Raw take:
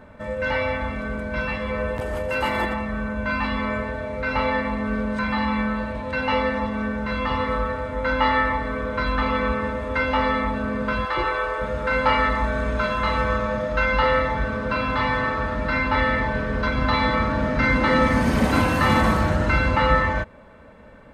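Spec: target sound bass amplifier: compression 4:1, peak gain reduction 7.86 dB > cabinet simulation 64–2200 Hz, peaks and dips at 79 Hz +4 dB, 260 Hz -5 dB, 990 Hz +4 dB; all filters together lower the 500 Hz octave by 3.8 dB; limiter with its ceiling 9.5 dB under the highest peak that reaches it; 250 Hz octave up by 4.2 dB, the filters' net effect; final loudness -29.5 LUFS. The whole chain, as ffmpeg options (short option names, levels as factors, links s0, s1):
-af "equalizer=f=250:t=o:g=9,equalizer=f=500:t=o:g=-6,alimiter=limit=0.251:level=0:latency=1,acompressor=threshold=0.0562:ratio=4,highpass=f=64:w=0.5412,highpass=f=64:w=1.3066,equalizer=f=79:t=q:w=4:g=4,equalizer=f=260:t=q:w=4:g=-5,equalizer=f=990:t=q:w=4:g=4,lowpass=f=2200:w=0.5412,lowpass=f=2200:w=1.3066,volume=0.944"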